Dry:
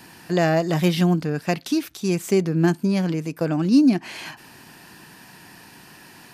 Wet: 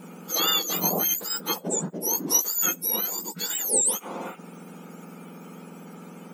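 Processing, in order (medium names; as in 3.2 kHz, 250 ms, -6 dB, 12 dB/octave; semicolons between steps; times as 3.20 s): spectrum inverted on a logarithmic axis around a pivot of 1.5 kHz; 2.04–2.54 s: tone controls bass -12 dB, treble +3 dB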